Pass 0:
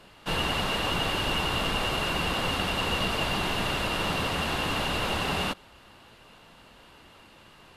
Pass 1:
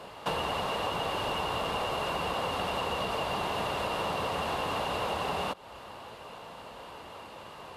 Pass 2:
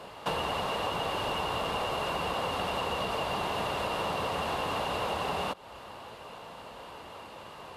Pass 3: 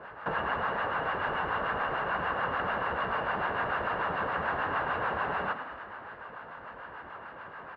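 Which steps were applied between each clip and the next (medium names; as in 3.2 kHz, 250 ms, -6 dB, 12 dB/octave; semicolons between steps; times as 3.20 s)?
high-pass 54 Hz; high-order bell 700 Hz +8 dB; compression 6:1, threshold -33 dBFS, peak gain reduction 12.5 dB; trim +3.5 dB
no audible change
harmonic tremolo 6.8 Hz, depth 70%, crossover 680 Hz; resonant low-pass 1.6 kHz, resonance Q 5.1; frequency-shifting echo 107 ms, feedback 63%, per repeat +37 Hz, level -9.5 dB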